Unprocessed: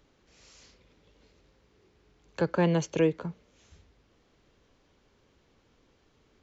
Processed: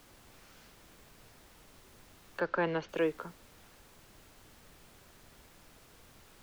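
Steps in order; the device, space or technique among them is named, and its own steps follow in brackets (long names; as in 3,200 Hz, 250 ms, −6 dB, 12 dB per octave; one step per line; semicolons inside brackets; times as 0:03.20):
horn gramophone (band-pass filter 290–4,300 Hz; parametric band 1,400 Hz +9 dB 0.77 octaves; tape wow and flutter; pink noise bed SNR 17 dB)
0:02.40–0:02.89: low-pass filter 5,000 Hz 24 dB per octave
level −5 dB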